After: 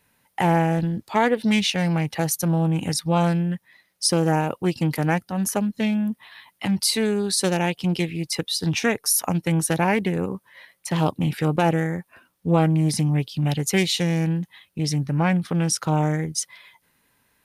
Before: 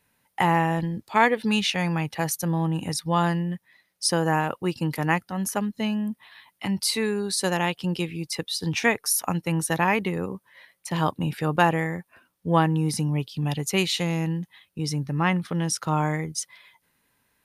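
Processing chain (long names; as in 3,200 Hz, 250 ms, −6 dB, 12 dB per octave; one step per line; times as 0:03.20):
dynamic equaliser 1,500 Hz, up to −7 dB, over −36 dBFS, Q 0.85
boost into a limiter +12 dB
highs frequency-modulated by the lows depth 0.19 ms
level −8 dB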